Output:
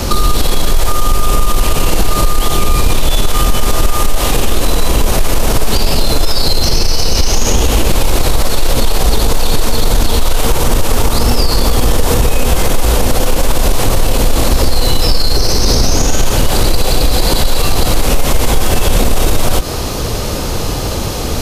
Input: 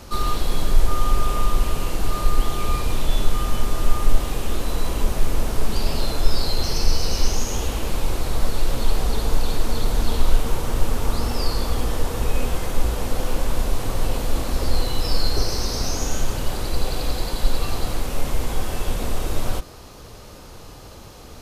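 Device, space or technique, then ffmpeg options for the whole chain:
mastering chain: -filter_complex "[0:a]equalizer=f=1.3k:t=o:w=1.7:g=-3.5,acrossover=split=470|5300[a][b][c];[a]acompressor=threshold=-24dB:ratio=4[d];[b]acompressor=threshold=-37dB:ratio=4[e];[c]acompressor=threshold=-41dB:ratio=4[f];[d][e][f]amix=inputs=3:normalize=0,acompressor=threshold=-26dB:ratio=2.5,asoftclip=type=tanh:threshold=-20.5dB,alimiter=level_in=25.5dB:limit=-1dB:release=50:level=0:latency=1,volume=-1dB"

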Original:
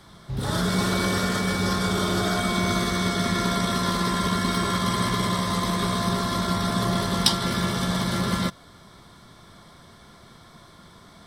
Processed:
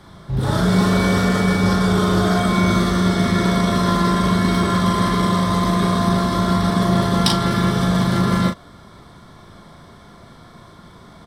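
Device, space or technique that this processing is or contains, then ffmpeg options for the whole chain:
behind a face mask: -filter_complex "[0:a]highshelf=f=2.1k:g=-8,asplit=2[a][b];[b]adelay=38,volume=-5dB[c];[a][c]amix=inputs=2:normalize=0,volume=6dB"

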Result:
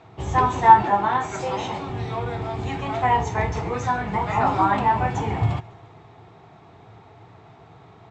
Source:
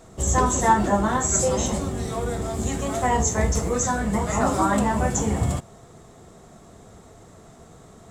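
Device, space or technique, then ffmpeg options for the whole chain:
frequency-shifting delay pedal into a guitar cabinet: -filter_complex "[0:a]asplit=6[a][b][c][d][e][f];[b]adelay=139,afreqshift=-32,volume=-23dB[g];[c]adelay=278,afreqshift=-64,volume=-27dB[h];[d]adelay=417,afreqshift=-96,volume=-31dB[i];[e]adelay=556,afreqshift=-128,volume=-35dB[j];[f]adelay=695,afreqshift=-160,volume=-39.1dB[k];[a][g][h][i][j][k]amix=inputs=6:normalize=0,highpass=100,equalizer=f=110:t=q:w=4:g=9,equalizer=f=220:t=q:w=4:g=-10,equalizer=f=550:t=q:w=4:g=-8,equalizer=f=860:t=q:w=4:g=9,equalizer=f=2.4k:t=q:w=4:g=7,lowpass=f=4.1k:w=0.5412,lowpass=f=4.1k:w=1.3066,asettb=1/sr,asplit=3[l][m][n];[l]atrim=end=0.824[o];[m]atrim=start=0.82:end=1.9,asetpts=PTS-STARTPTS,afade=t=in:d=0.004:c=qsin,afade=t=out:st=1.076:d=0.004:c=qsin,highpass=f=230:p=1[p];[n]atrim=start=1.896[q];[o][p]acrossfade=d=0.004:c1=hsin:c2=qsin[r];[r][q]acrossfade=d=0.004:c1=qsin:c2=hsin"

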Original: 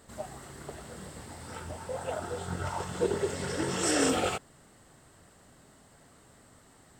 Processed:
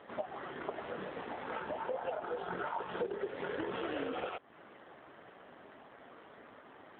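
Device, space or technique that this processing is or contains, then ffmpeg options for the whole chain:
voicemail: -af "highpass=320,lowpass=3.1k,acompressor=threshold=-42dB:ratio=10,volume=9dB" -ar 8000 -c:a libopencore_amrnb -b:a 7400

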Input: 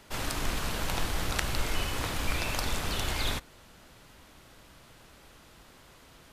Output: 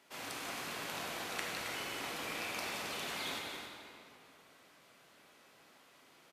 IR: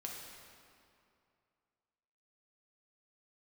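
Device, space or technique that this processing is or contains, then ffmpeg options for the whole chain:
stadium PA: -filter_complex "[0:a]highpass=240,equalizer=f=2.3k:t=o:w=0.77:g=3,aecho=1:1:177.8|268.2:0.316|0.355[a];[1:a]atrim=start_sample=2205[b];[a][b]afir=irnorm=-1:irlink=0,volume=-6.5dB"

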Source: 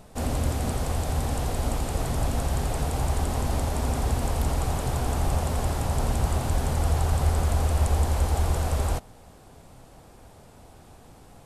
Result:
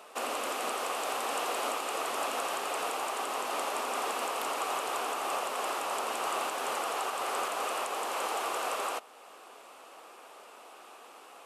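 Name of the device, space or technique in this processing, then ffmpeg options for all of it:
laptop speaker: -af "highpass=f=370:w=0.5412,highpass=f=370:w=1.3066,equalizer=f=1.2k:t=o:w=0.49:g=10.5,equalizer=f=2.7k:t=o:w=0.57:g=9.5,alimiter=limit=-22dB:level=0:latency=1:release=457"

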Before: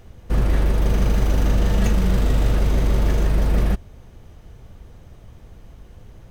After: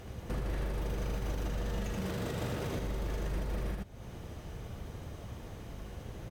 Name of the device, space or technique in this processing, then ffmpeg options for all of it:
podcast mastering chain: -filter_complex "[0:a]asettb=1/sr,asplit=3[a][b][c];[a]atrim=end=1.934[d];[b]atrim=start=1.93:end=2.78,asetpts=PTS-STARTPTS,afade=t=in:d=0.004:c=qsin,afade=t=out:st=0.846:d=0.004:c=qsin,highpass=f=81:w=0.5412,highpass=f=81:w=1.3066[e];[c]atrim=start=2.776[f];[d][e]acrossfade=d=0.004:c1=hsin:c2=qsin[g];[g][f]acrossfade=d=0.004:c1=qsin:c2=hsin,highpass=f=96:p=1,aecho=1:1:78:0.596,acompressor=threshold=-34dB:ratio=2,alimiter=level_in=5dB:limit=-24dB:level=0:latency=1:release=449,volume=-5dB,volume=3dB" -ar 44100 -c:a libmp3lame -b:a 112k

